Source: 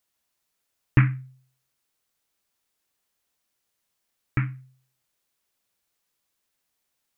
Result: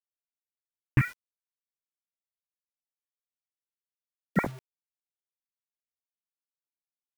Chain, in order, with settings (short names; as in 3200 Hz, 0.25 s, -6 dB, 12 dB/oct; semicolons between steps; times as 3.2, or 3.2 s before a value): 1.01–4.47 sine-wave speech; notch 1300 Hz, Q 11; bit-crush 7-bit; gain -5 dB